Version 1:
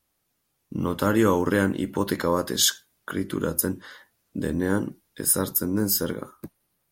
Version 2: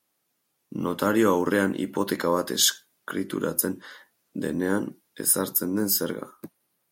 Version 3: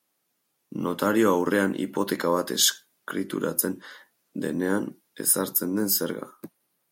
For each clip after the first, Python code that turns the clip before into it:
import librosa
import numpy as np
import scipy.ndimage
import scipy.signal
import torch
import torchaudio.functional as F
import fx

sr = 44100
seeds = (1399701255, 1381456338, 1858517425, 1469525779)

y1 = scipy.signal.sosfilt(scipy.signal.butter(2, 180.0, 'highpass', fs=sr, output='sos'), x)
y2 = scipy.signal.sosfilt(scipy.signal.butter(2, 110.0, 'highpass', fs=sr, output='sos'), y1)